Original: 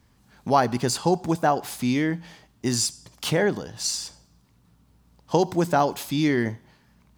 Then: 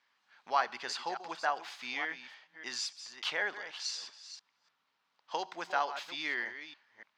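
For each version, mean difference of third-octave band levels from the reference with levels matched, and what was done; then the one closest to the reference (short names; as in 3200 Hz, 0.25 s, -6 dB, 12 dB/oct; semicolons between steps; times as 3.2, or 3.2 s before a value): 10.5 dB: reverse delay 0.293 s, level -11 dB; HPF 1400 Hz 12 dB/oct; air absorption 210 m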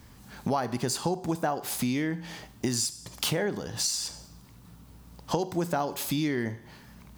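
5.0 dB: high shelf 11000 Hz +7 dB; Schroeder reverb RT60 0.42 s, combs from 31 ms, DRR 16.5 dB; compressor 4:1, threshold -37 dBFS, peak gain reduction 19 dB; gain +8.5 dB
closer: second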